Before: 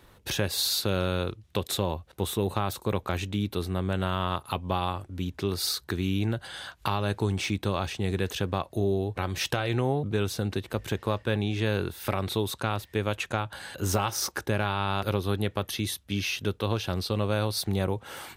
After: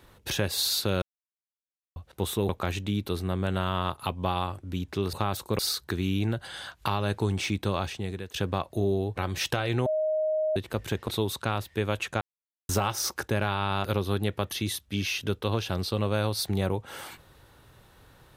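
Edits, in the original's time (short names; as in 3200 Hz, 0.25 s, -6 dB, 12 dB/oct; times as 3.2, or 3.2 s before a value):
1.02–1.96 mute
2.49–2.95 move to 5.59
7.8–8.34 fade out, to -16.5 dB
9.86–10.56 bleep 623 Hz -23.5 dBFS
11.08–12.26 cut
13.39–13.87 mute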